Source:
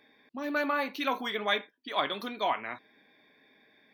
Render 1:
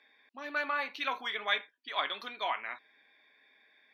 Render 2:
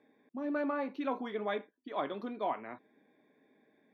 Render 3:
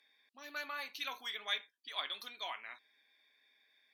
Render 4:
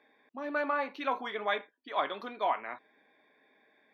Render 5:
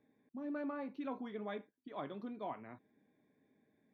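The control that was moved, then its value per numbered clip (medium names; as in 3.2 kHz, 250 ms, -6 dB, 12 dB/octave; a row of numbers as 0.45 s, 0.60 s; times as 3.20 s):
band-pass filter, frequency: 2.2 kHz, 300 Hz, 7.5 kHz, 820 Hz, 100 Hz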